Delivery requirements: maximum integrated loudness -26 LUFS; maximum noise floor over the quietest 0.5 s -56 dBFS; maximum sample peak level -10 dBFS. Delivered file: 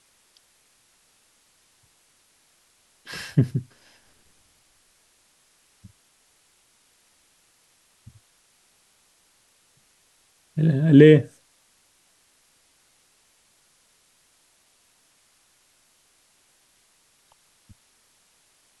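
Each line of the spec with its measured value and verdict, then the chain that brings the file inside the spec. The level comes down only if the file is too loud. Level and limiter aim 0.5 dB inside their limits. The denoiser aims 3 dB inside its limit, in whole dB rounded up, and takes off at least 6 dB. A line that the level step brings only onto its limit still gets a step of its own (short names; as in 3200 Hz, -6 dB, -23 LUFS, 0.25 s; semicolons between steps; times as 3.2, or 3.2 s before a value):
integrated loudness -18.5 LUFS: fail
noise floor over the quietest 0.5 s -63 dBFS: OK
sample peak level -2.0 dBFS: fail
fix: gain -8 dB; limiter -10.5 dBFS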